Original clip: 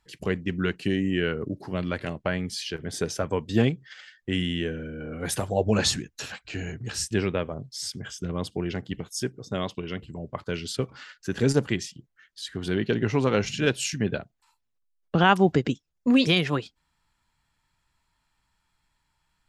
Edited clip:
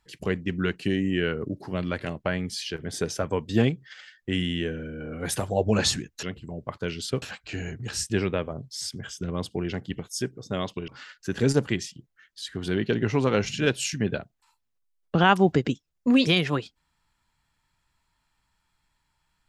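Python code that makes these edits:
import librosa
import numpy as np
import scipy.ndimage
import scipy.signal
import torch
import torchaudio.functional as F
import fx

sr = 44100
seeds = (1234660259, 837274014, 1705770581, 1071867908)

y = fx.edit(x, sr, fx.move(start_s=9.89, length_s=0.99, to_s=6.23), tone=tone)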